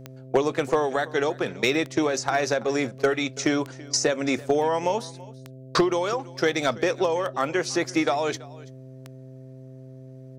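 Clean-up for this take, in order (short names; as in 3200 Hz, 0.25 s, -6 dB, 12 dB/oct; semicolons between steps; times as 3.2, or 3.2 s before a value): clip repair -11.5 dBFS; de-click; de-hum 130.7 Hz, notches 5; inverse comb 0.332 s -21 dB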